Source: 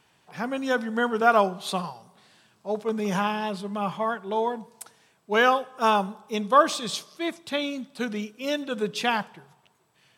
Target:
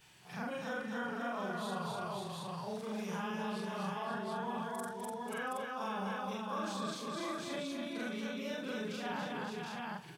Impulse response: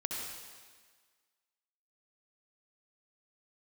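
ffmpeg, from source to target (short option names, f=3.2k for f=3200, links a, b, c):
-filter_complex "[0:a]afftfilt=real='re':imag='-im':win_size=4096:overlap=0.75,areverse,acompressor=threshold=-38dB:ratio=4,areverse,aecho=1:1:41|63|249|533|724:0.299|0.112|0.631|0.422|0.596,acrossover=split=260|620|1500[a][b][c][d];[a]acompressor=threshold=-49dB:ratio=4[e];[b]acompressor=threshold=-46dB:ratio=4[f];[c]acompressor=threshold=-42dB:ratio=4[g];[d]acompressor=threshold=-58dB:ratio=4[h];[e][f][g][h]amix=inputs=4:normalize=0,equalizer=f=570:w=0.4:g=-8.5,volume=9dB"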